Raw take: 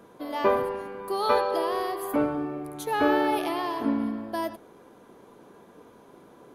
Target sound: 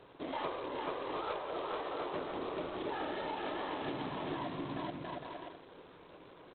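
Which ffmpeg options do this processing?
-filter_complex "[0:a]lowshelf=f=70:g=-5.5,afftfilt=real='hypot(re,im)*cos(2*PI*random(0))':imag='hypot(re,im)*sin(2*PI*random(1))':win_size=512:overlap=0.75,equalizer=f=220:t=o:w=0.22:g=-14,asplit=2[s0][s1];[s1]aecho=0:1:430|709.5|891.2|1009|1086:0.631|0.398|0.251|0.158|0.1[s2];[s0][s2]amix=inputs=2:normalize=0,acompressor=threshold=0.0158:ratio=16,volume=1.12" -ar 8000 -c:a adpcm_g726 -b:a 16k

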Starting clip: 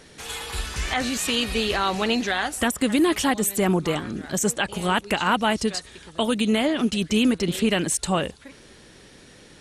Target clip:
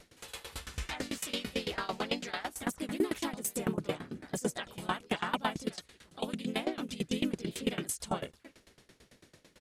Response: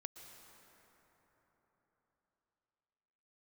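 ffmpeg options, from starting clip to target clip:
-filter_complex "[0:a]asplit=3[s0][s1][s2];[s1]asetrate=35002,aresample=44100,atempo=1.25992,volume=0.447[s3];[s2]asetrate=52444,aresample=44100,atempo=0.840896,volume=0.794[s4];[s0][s3][s4]amix=inputs=3:normalize=0,aeval=exprs='val(0)*pow(10,-22*if(lt(mod(9*n/s,1),2*abs(9)/1000),1-mod(9*n/s,1)/(2*abs(9)/1000),(mod(9*n/s,1)-2*abs(9)/1000)/(1-2*abs(9)/1000))/20)':c=same,volume=0.398"

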